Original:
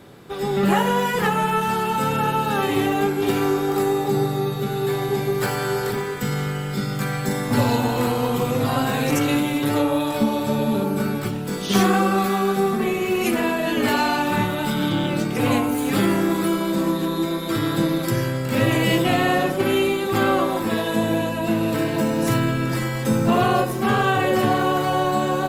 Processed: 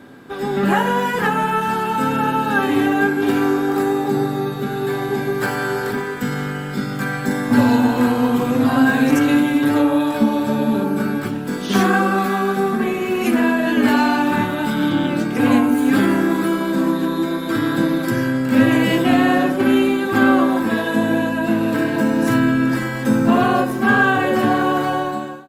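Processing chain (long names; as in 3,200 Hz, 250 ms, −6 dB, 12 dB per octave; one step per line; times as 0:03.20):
fade-out on the ending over 0.64 s
parametric band 1,100 Hz +5.5 dB 2.5 octaves
hollow resonant body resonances 260/1,600 Hz, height 14 dB, ringing for 70 ms
level −3 dB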